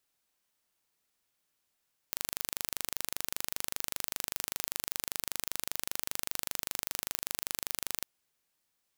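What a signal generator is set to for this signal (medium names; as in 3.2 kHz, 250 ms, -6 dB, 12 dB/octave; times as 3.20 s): pulse train 25.1 per s, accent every 0, -5.5 dBFS 5.90 s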